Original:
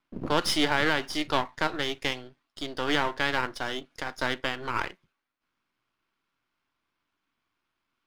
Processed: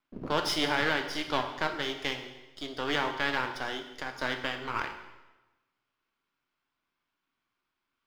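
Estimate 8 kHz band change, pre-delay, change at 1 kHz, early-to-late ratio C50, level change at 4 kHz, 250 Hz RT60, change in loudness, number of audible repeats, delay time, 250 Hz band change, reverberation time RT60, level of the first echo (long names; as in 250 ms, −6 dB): −4.5 dB, 4 ms, −2.5 dB, 8.5 dB, −2.5 dB, 1.1 s, −3.0 dB, no echo audible, no echo audible, −4.0 dB, 1.1 s, no echo audible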